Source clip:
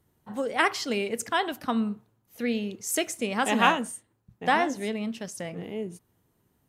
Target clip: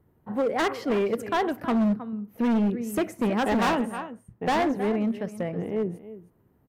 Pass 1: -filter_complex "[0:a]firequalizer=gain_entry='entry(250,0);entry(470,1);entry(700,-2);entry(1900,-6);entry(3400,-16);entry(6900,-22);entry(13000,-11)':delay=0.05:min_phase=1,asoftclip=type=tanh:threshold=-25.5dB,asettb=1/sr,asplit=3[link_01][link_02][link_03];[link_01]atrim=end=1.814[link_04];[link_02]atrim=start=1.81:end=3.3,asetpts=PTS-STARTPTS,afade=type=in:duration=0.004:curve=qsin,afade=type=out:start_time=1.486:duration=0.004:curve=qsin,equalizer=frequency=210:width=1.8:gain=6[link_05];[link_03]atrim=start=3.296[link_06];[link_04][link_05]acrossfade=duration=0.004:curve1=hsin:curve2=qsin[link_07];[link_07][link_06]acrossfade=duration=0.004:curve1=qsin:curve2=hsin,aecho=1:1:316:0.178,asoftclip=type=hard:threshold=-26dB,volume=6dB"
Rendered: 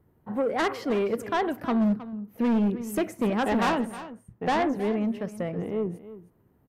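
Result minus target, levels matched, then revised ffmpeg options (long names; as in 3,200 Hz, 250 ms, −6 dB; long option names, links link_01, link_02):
soft clipping: distortion +13 dB
-filter_complex "[0:a]firequalizer=gain_entry='entry(250,0);entry(470,1);entry(700,-2);entry(1900,-6);entry(3400,-16);entry(6900,-22);entry(13000,-11)':delay=0.05:min_phase=1,asoftclip=type=tanh:threshold=-14dB,asettb=1/sr,asplit=3[link_01][link_02][link_03];[link_01]atrim=end=1.814[link_04];[link_02]atrim=start=1.81:end=3.3,asetpts=PTS-STARTPTS,afade=type=in:duration=0.004:curve=qsin,afade=type=out:start_time=1.486:duration=0.004:curve=qsin,equalizer=frequency=210:width=1.8:gain=6[link_05];[link_03]atrim=start=3.296[link_06];[link_04][link_05]acrossfade=duration=0.004:curve1=hsin:curve2=qsin[link_07];[link_07][link_06]acrossfade=duration=0.004:curve1=qsin:curve2=hsin,aecho=1:1:316:0.178,asoftclip=type=hard:threshold=-26dB,volume=6dB"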